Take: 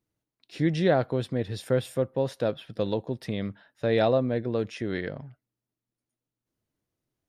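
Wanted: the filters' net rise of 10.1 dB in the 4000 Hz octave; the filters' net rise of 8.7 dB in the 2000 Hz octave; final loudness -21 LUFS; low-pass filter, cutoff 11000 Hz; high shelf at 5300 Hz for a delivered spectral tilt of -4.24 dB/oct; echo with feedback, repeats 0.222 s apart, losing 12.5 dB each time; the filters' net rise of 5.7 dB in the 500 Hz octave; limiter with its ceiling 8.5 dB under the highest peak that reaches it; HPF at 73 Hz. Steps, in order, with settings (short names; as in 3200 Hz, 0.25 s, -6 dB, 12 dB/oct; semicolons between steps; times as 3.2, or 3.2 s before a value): HPF 73 Hz; LPF 11000 Hz; bell 500 Hz +6 dB; bell 2000 Hz +8 dB; bell 4000 Hz +8 dB; high shelf 5300 Hz +3.5 dB; limiter -13.5 dBFS; feedback echo 0.222 s, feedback 24%, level -12.5 dB; gain +5 dB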